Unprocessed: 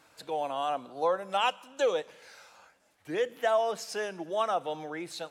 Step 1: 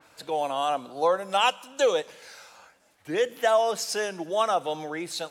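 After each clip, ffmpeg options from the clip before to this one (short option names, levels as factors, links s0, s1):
-af "adynamicequalizer=threshold=0.00447:dfrequency=3600:dqfactor=0.7:tfrequency=3600:tqfactor=0.7:attack=5:release=100:ratio=0.375:range=3:mode=boostabove:tftype=highshelf,volume=1.68"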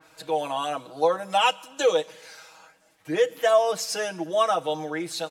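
-af "aecho=1:1:6.3:0.9,volume=0.841"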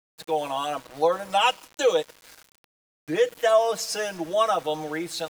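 -af "aeval=exprs='val(0)*gte(abs(val(0)),0.00944)':c=same"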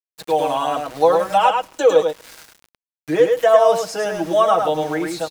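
-filter_complex "[0:a]acrossover=split=1500[s0][s1];[s1]acompressor=threshold=0.00891:ratio=4[s2];[s0][s2]amix=inputs=2:normalize=0,aecho=1:1:105:0.596,volume=2.24"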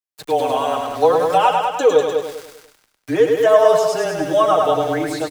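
-af "afreqshift=-21,aecho=1:1:197|394|591:0.501|0.115|0.0265"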